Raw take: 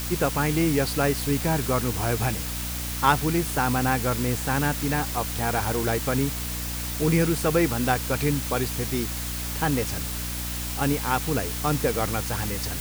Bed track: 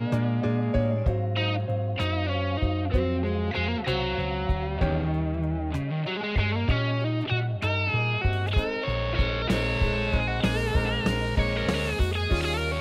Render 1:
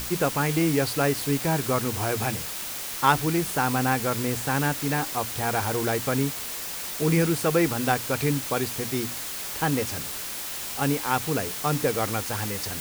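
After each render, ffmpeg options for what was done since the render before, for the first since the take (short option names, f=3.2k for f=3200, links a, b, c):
-af "bandreject=f=60:t=h:w=6,bandreject=f=120:t=h:w=6,bandreject=f=180:t=h:w=6,bandreject=f=240:t=h:w=6,bandreject=f=300:t=h:w=6"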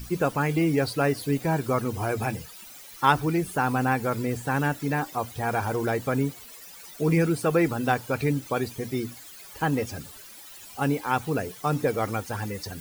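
-af "afftdn=nr=16:nf=-34"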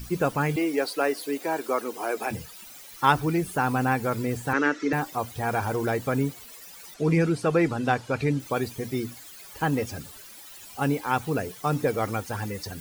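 -filter_complex "[0:a]asettb=1/sr,asplit=3[a][b][c];[a]atrim=end=0.564[d];[b]atrim=start=0.56:end=2.31,asetpts=PTS-STARTPTS,afade=t=in:d=0.004:c=qsin,afade=t=out:st=1.746:d=0.004:c=qsin,highpass=f=300:w=0.5412,highpass=f=300:w=1.3066[e];[c]atrim=start=2.306[f];[d][e]acrossfade=d=0.004:c1=hsin:c2=qsin[g];[g][f]acrossfade=d=0.004:c1=qsin:c2=hsin,asettb=1/sr,asplit=3[h][i][j];[h]atrim=end=4.534[k];[i]atrim=start=4.53:end=4.93,asetpts=PTS-STARTPTS,afade=t=in:d=0.004:c=qsin,afade=t=out:st=0.396:d=0.004:c=qsin,highpass=f=250:w=0.5412,highpass=f=250:w=1.3066,equalizer=f=320:t=q:w=4:g=8,equalizer=f=450:t=q:w=4:g=6,equalizer=f=770:t=q:w=4:g=-9,equalizer=f=1.3k:t=q:w=4:g=9,equalizer=f=2k:t=q:w=4:g=9,equalizer=f=6k:t=q:w=4:g=6,lowpass=f=6.2k:w=0.5412,lowpass=f=6.2k:w=1.3066[l];[j]atrim=start=4.926[m];[k][l]acrossfade=d=0.004:c1=hsin:c2=qsin[n];[n][m]acrossfade=d=0.004:c1=qsin:c2=hsin,asettb=1/sr,asplit=3[o][p][q];[o]atrim=end=6.944[r];[p]atrim=start=6.94:end=8.4,asetpts=PTS-STARTPTS,afade=t=in:d=0.004:c=qsin,afade=t=out:st=1.456:d=0.004:c=qsin,lowpass=7.2k[s];[q]atrim=start=8.396[t];[r][s]acrossfade=d=0.004:c1=hsin:c2=qsin[u];[u][t]acrossfade=d=0.004:c1=qsin:c2=hsin"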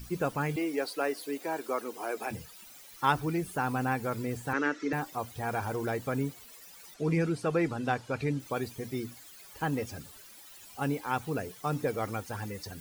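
-af "volume=-6dB"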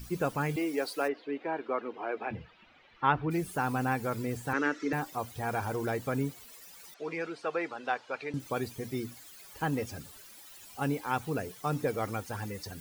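-filter_complex "[0:a]asplit=3[a][b][c];[a]afade=t=out:st=1.07:d=0.02[d];[b]lowpass=f=3k:w=0.5412,lowpass=f=3k:w=1.3066,afade=t=in:st=1.07:d=0.02,afade=t=out:st=3.3:d=0.02[e];[c]afade=t=in:st=3.3:d=0.02[f];[d][e][f]amix=inputs=3:normalize=0,asettb=1/sr,asplit=3[g][h][i];[g]atrim=end=6.944[j];[h]atrim=start=6.94:end=8.34,asetpts=PTS-STARTPTS,afade=t=in:d=0.004:c=qsin,afade=t=out:st=1.396:d=0.004:c=qsin,highpass=530,lowpass=4.4k[k];[i]atrim=start=8.336[l];[j][k]acrossfade=d=0.004:c1=hsin:c2=qsin[m];[m][l]acrossfade=d=0.004:c1=qsin:c2=hsin"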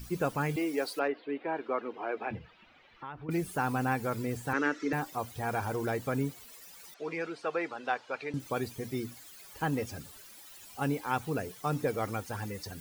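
-filter_complex "[0:a]asettb=1/sr,asplit=3[a][b][c];[a]atrim=end=0.994[d];[b]atrim=start=0.99:end=1.55,asetpts=PTS-STARTPTS,afade=t=in:d=0.004:c=qsin,afade=t=out:st=0.556:d=0.004:c=qsin,lowpass=f=4.2k:w=0.5412,lowpass=f=4.2k:w=1.3066[e];[c]atrim=start=1.546[f];[d][e]acrossfade=d=0.004:c1=hsin:c2=qsin[g];[g][f]acrossfade=d=0.004:c1=qsin:c2=hsin,asettb=1/sr,asplit=3[h][i][j];[h]atrim=end=2.384[k];[i]atrim=start=2.38:end=3.29,asetpts=PTS-STARTPTS,afade=t=in:d=0.004:c=qsin,afade=t=out:st=0.906:d=0.004:c=qsin,acompressor=threshold=-44dB:ratio=3:attack=3.2:release=140:knee=1:detection=peak[l];[j]atrim=start=3.286[m];[k][l]acrossfade=d=0.004:c1=hsin:c2=qsin[n];[n][m]acrossfade=d=0.004:c1=qsin:c2=hsin"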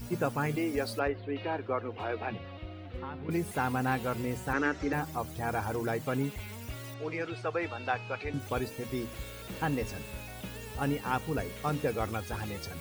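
-filter_complex "[1:a]volume=-17.5dB[a];[0:a][a]amix=inputs=2:normalize=0"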